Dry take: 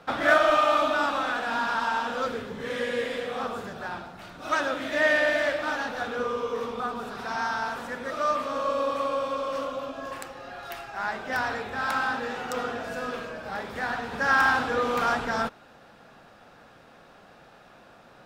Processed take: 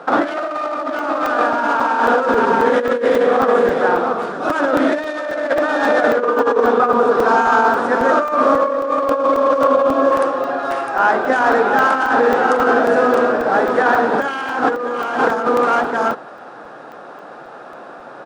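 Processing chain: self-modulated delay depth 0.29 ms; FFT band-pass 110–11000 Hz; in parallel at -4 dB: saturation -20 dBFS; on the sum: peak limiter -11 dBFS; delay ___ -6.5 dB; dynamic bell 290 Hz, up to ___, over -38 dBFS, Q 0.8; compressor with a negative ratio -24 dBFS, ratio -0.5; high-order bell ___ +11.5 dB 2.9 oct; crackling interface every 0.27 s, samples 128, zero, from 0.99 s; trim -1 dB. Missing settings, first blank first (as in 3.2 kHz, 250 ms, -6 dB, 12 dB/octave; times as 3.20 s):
657 ms, +6 dB, 660 Hz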